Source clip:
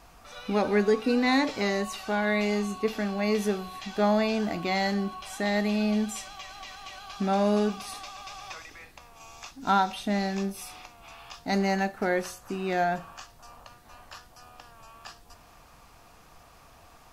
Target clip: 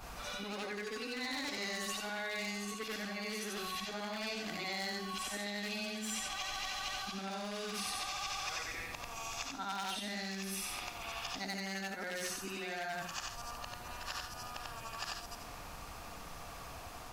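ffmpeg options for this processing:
ffmpeg -i in.wav -filter_complex "[0:a]afftfilt=real='re':imag='-im':win_size=8192:overlap=0.75,areverse,acompressor=threshold=-38dB:ratio=6,areverse,aeval=exprs='0.0211*(abs(mod(val(0)/0.0211+3,4)-2)-1)':channel_layout=same,acrossover=split=1400|3800[link_01][link_02][link_03];[link_01]acompressor=threshold=-56dB:ratio=4[link_04];[link_02]acompressor=threshold=-54dB:ratio=4[link_05];[link_03]acompressor=threshold=-53dB:ratio=4[link_06];[link_04][link_05][link_06]amix=inputs=3:normalize=0,volume=11.5dB" out.wav

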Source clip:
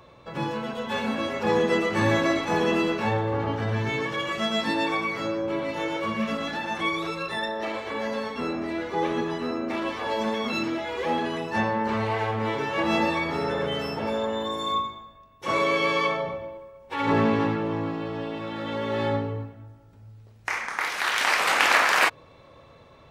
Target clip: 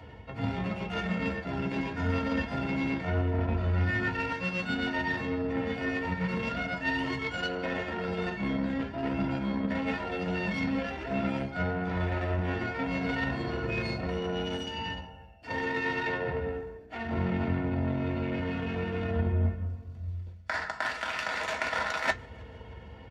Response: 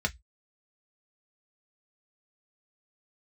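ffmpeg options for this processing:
-filter_complex "[0:a]areverse,acompressor=threshold=-36dB:ratio=10,areverse,asplit=6[link_01][link_02][link_03][link_04][link_05][link_06];[link_02]adelay=155,afreqshift=-70,volume=-20dB[link_07];[link_03]adelay=310,afreqshift=-140,volume=-24.2dB[link_08];[link_04]adelay=465,afreqshift=-210,volume=-28.3dB[link_09];[link_05]adelay=620,afreqshift=-280,volume=-32.5dB[link_10];[link_06]adelay=775,afreqshift=-350,volume=-36.6dB[link_11];[link_01][link_07][link_08][link_09][link_10][link_11]amix=inputs=6:normalize=0,asetrate=36028,aresample=44100,atempo=1.22405,aeval=exprs='0.075*(cos(1*acos(clip(val(0)/0.075,-1,1)))-cos(1*PI/2))+0.00596*(cos(7*acos(clip(val(0)/0.075,-1,1)))-cos(7*PI/2))':channel_layout=same[link_12];[1:a]atrim=start_sample=2205[link_13];[link_12][link_13]afir=irnorm=-1:irlink=0,volume=3dB"

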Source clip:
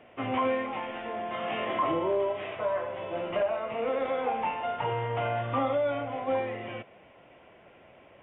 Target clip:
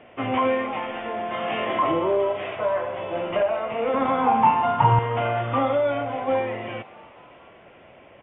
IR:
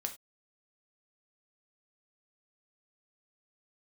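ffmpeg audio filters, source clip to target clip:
-filter_complex "[0:a]asettb=1/sr,asplit=3[link_01][link_02][link_03];[link_01]atrim=end=3.944[link_04];[link_02]atrim=start=3.94:end=4.99,asetpts=PTS-STARTPTS,afade=type=in:duration=0.004:curve=qsin,afade=type=out:start_time=1.046:duration=0.004:curve=qsin,equalizer=frequency=125:width_type=o:width=1:gain=12,equalizer=frequency=250:width_type=o:width=1:gain=8,equalizer=frequency=500:width_type=o:width=1:gain=-8,equalizer=frequency=1000:width_type=o:width=1:gain=12,equalizer=frequency=2000:width_type=o:width=1:gain=-3[link_05];[link_03]atrim=start=4.986[link_06];[link_04][link_05]acrossfade=duration=0.004:curve1=hsin:curve2=qsin[link_07];[link_07][link_06]acrossfade=duration=0.004:curve1=qsin:curve2=hsin,asplit=6[link_08][link_09][link_10][link_11][link_12][link_13];[link_09]adelay=223,afreqshift=120,volume=-21.5dB[link_14];[link_10]adelay=446,afreqshift=240,volume=-25.2dB[link_15];[link_11]adelay=669,afreqshift=360,volume=-29dB[link_16];[link_12]adelay=892,afreqshift=480,volume=-32.7dB[link_17];[link_13]adelay=1115,afreqshift=600,volume=-36.5dB[link_18];[link_08][link_14][link_15][link_16][link_17][link_18]amix=inputs=6:normalize=0,aresample=8000,aresample=44100,volume=5.5dB"

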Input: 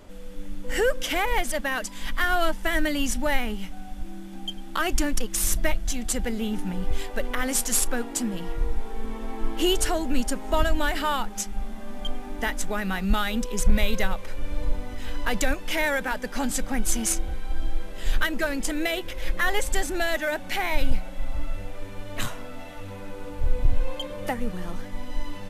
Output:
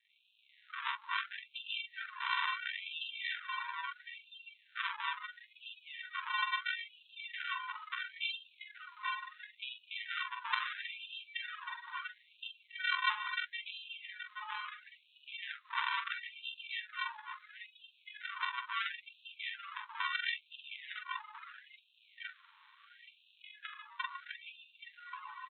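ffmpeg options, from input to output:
ffmpeg -i in.wav -filter_complex "[0:a]aresample=8000,acrusher=samples=19:mix=1:aa=0.000001,aresample=44100,equalizer=frequency=270:width=0.79:gain=-6,asplit=2[link_01][link_02];[link_02]adelay=44,volume=-4dB[link_03];[link_01][link_03]amix=inputs=2:normalize=0,asplit=2[link_04][link_05];[link_05]aecho=0:1:826:0.501[link_06];[link_04][link_06]amix=inputs=2:normalize=0,afftdn=noise_reduction=21:noise_floor=-37,acompressor=threshold=-26dB:ratio=12,afftfilt=real='re*gte(b*sr/1024,820*pow(2500/820,0.5+0.5*sin(2*PI*0.74*pts/sr)))':imag='im*gte(b*sr/1024,820*pow(2500/820,0.5+0.5*sin(2*PI*0.74*pts/sr)))':win_size=1024:overlap=0.75,volume=9.5dB" out.wav

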